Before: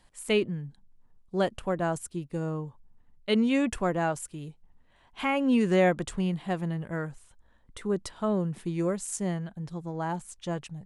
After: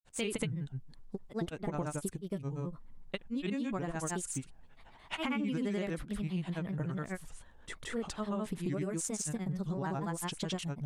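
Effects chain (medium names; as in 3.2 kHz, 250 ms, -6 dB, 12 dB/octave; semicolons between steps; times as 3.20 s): dynamic bell 640 Hz, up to -6 dB, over -41 dBFS, Q 0.94; compression 10:1, threshold -37 dBFS, peak gain reduction 16.5 dB; granulator 100 ms, grains 24 per s, spray 191 ms, pitch spread up and down by 3 st; trim +7 dB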